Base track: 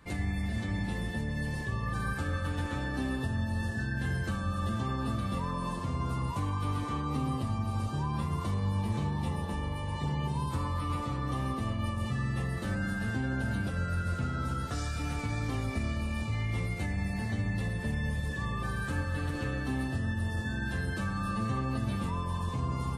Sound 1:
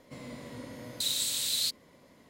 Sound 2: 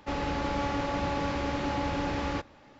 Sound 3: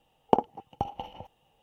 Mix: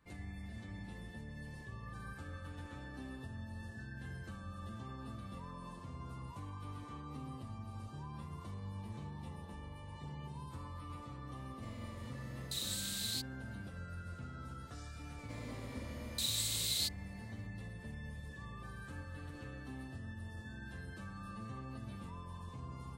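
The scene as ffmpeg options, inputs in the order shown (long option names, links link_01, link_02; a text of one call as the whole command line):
ffmpeg -i bed.wav -i cue0.wav -filter_complex "[1:a]asplit=2[link_01][link_02];[0:a]volume=-14.5dB[link_03];[link_01]atrim=end=2.29,asetpts=PTS-STARTPTS,volume=-9.5dB,afade=type=in:duration=0.004:curve=hsin,afade=type=out:start_time=2.286:duration=0.004:curve=hsin,adelay=11510[link_04];[link_02]atrim=end=2.29,asetpts=PTS-STARTPTS,volume=-5.5dB,afade=type=in:duration=0.004:curve=hsin,afade=type=out:start_time=2.286:duration=0.004:curve=hsin,adelay=15180[link_05];[link_03][link_04][link_05]amix=inputs=3:normalize=0" out.wav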